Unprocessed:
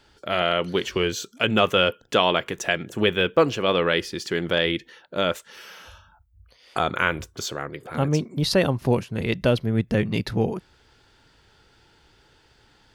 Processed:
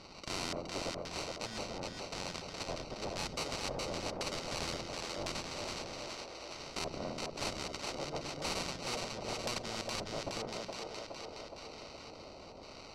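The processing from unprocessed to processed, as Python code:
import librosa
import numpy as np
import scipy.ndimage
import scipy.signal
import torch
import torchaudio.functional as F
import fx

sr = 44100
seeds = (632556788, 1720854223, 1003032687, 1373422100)

p1 = F.preemphasis(torch.from_numpy(x), 0.97).numpy()
p2 = fx.spec_box(p1, sr, start_s=0.9, length_s=1.77, low_hz=250.0, high_hz=8300.0, gain_db=-17)
p3 = fx.high_shelf(p2, sr, hz=6300.0, db=-6.0)
p4 = fx.rider(p3, sr, range_db=4, speed_s=0.5)
p5 = p3 + (p4 * librosa.db_to_amplitude(-1.5))
p6 = fx.sample_hold(p5, sr, seeds[0], rate_hz=1700.0, jitter_pct=0)
p7 = 10.0 ** (-30.5 / 20.0) * np.tanh(p6 / 10.0 ** (-30.5 / 20.0))
p8 = fx.filter_lfo_lowpass(p7, sr, shape='square', hz=0.95, low_hz=600.0, high_hz=4900.0, q=4.5)
p9 = p8 + fx.echo_split(p8, sr, split_hz=330.0, low_ms=92, high_ms=418, feedback_pct=52, wet_db=-5, dry=0)
p10 = fx.spectral_comp(p9, sr, ratio=2.0)
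y = p10 * librosa.db_to_amplitude(1.0)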